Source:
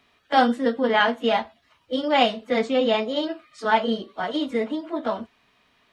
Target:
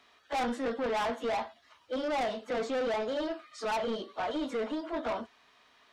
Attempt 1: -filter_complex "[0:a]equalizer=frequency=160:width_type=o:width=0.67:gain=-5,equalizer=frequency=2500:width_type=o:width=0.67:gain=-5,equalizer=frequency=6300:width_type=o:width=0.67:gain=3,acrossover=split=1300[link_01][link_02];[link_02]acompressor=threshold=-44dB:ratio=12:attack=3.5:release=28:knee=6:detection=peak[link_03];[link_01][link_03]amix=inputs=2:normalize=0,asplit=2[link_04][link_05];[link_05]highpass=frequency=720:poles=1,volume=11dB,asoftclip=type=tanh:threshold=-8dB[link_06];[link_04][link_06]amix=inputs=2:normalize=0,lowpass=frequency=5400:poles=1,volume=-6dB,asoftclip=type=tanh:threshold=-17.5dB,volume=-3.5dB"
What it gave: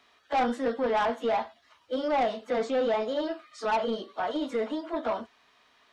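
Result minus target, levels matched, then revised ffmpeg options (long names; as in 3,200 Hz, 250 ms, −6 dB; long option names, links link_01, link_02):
soft clipping: distortion −6 dB
-filter_complex "[0:a]equalizer=frequency=160:width_type=o:width=0.67:gain=-5,equalizer=frequency=2500:width_type=o:width=0.67:gain=-5,equalizer=frequency=6300:width_type=o:width=0.67:gain=3,acrossover=split=1300[link_01][link_02];[link_02]acompressor=threshold=-44dB:ratio=12:attack=3.5:release=28:knee=6:detection=peak[link_03];[link_01][link_03]amix=inputs=2:normalize=0,asplit=2[link_04][link_05];[link_05]highpass=frequency=720:poles=1,volume=11dB,asoftclip=type=tanh:threshold=-8dB[link_06];[link_04][link_06]amix=inputs=2:normalize=0,lowpass=frequency=5400:poles=1,volume=-6dB,asoftclip=type=tanh:threshold=-25dB,volume=-3.5dB"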